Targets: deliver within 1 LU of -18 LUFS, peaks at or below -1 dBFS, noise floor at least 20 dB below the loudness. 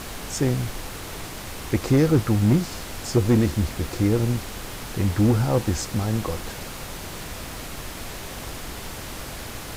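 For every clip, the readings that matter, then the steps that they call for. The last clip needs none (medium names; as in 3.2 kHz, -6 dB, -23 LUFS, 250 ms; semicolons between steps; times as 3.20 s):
clipped samples 0.4%; clipping level -11.0 dBFS; noise floor -36 dBFS; noise floor target -45 dBFS; loudness -25.0 LUFS; peak level -11.0 dBFS; loudness target -18.0 LUFS
-> clip repair -11 dBFS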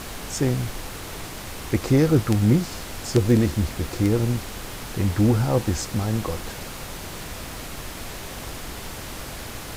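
clipped samples 0.0%; noise floor -36 dBFS; noise floor target -45 dBFS
-> noise print and reduce 9 dB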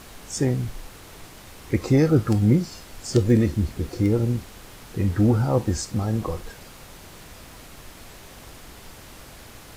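noise floor -45 dBFS; loudness -23.0 LUFS; peak level -4.0 dBFS; loudness target -18.0 LUFS
-> trim +5 dB; peak limiter -1 dBFS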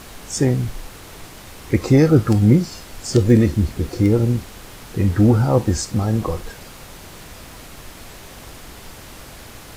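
loudness -18.0 LUFS; peak level -1.0 dBFS; noise floor -40 dBFS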